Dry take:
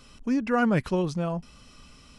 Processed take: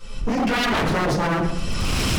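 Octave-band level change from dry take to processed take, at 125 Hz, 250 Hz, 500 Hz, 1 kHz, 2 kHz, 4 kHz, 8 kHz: +6.5 dB, +2.5 dB, +4.0 dB, +8.0 dB, +9.5 dB, +18.5 dB, +17.5 dB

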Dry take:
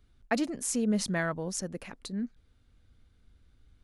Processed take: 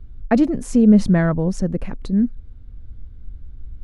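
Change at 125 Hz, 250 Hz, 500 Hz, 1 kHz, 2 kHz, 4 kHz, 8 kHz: +17.5 dB, +16.0 dB, +11.5 dB, +8.5 dB, +4.5 dB, no reading, -4.0 dB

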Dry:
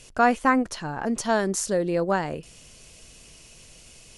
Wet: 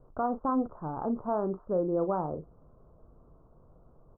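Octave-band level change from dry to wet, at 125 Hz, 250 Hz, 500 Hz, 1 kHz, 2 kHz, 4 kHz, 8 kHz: -5.5 dB, -5.5 dB, -5.5 dB, -8.5 dB, under -25 dB, under -40 dB, under -40 dB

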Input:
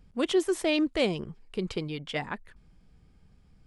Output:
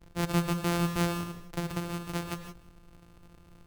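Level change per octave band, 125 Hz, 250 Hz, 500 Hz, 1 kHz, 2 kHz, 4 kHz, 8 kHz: +8.0 dB, -2.0 dB, -8.0 dB, +4.0 dB, -3.0 dB, -5.5 dB, +2.0 dB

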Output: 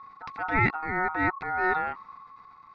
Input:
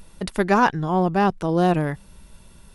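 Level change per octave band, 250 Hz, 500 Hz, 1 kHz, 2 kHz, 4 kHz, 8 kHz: -13.0 dB, -12.5 dB, -6.0 dB, +1.5 dB, -14.0 dB, no reading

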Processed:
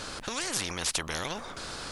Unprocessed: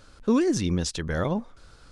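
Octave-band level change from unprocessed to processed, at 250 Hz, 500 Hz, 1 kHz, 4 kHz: -17.0 dB, -11.5 dB, -1.0 dB, +4.5 dB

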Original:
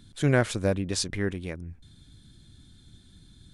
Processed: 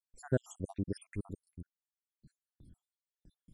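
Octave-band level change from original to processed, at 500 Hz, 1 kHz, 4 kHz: -12.0 dB, -17.0 dB, -27.5 dB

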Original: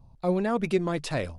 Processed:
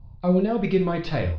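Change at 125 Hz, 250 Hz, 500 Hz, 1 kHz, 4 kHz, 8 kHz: +7.0 dB, +5.0 dB, +3.5 dB, +1.0 dB, +1.0 dB, under -15 dB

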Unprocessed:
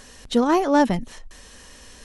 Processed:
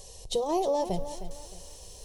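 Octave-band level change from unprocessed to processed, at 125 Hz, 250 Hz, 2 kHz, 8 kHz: -8.0 dB, -15.0 dB, -24.5 dB, -1.5 dB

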